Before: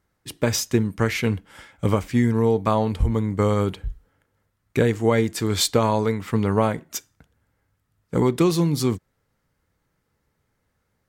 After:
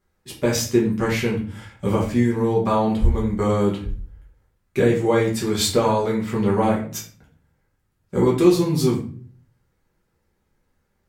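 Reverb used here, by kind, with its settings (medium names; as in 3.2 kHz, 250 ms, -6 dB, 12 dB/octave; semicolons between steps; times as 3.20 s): simulated room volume 37 m³, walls mixed, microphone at 1.1 m; trim -5.5 dB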